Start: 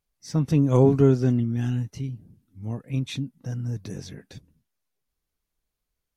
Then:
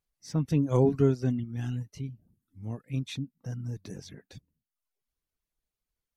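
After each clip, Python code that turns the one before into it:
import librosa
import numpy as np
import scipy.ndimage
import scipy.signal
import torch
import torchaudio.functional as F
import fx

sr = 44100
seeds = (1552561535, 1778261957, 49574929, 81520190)

y = fx.dereverb_blind(x, sr, rt60_s=0.71)
y = F.gain(torch.from_numpy(y), -4.5).numpy()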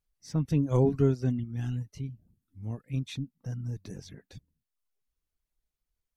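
y = fx.low_shelf(x, sr, hz=76.0, db=9.5)
y = F.gain(torch.from_numpy(y), -2.0).numpy()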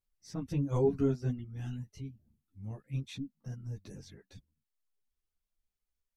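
y = fx.ensemble(x, sr)
y = F.gain(torch.from_numpy(y), -1.5).numpy()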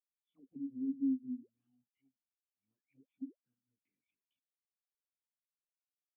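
y = fx.formant_cascade(x, sr, vowel='i')
y = fx.auto_wah(y, sr, base_hz=260.0, top_hz=3500.0, q=17.0, full_db=-37.5, direction='down')
y = F.gain(torch.from_numpy(y), 4.5).numpy()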